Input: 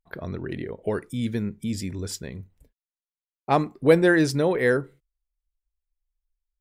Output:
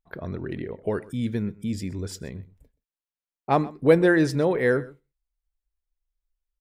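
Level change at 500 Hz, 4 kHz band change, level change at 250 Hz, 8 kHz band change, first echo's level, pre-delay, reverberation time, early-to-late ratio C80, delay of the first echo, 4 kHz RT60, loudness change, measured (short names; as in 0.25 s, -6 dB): 0.0 dB, -4.0 dB, 0.0 dB, -5.5 dB, -20.5 dB, none, none, none, 0.127 s, none, -0.5 dB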